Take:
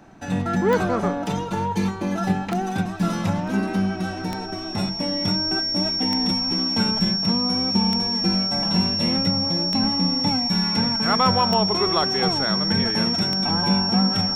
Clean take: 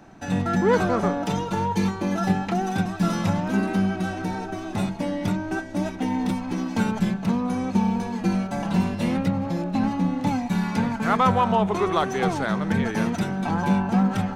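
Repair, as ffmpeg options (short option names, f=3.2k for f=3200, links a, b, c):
-af "adeclick=t=4,bandreject=f=5.5k:w=30"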